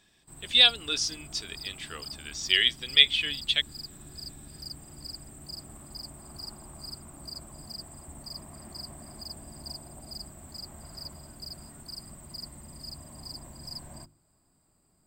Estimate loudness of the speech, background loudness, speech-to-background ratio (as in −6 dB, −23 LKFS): −22.5 LKFS, −42.0 LKFS, 19.5 dB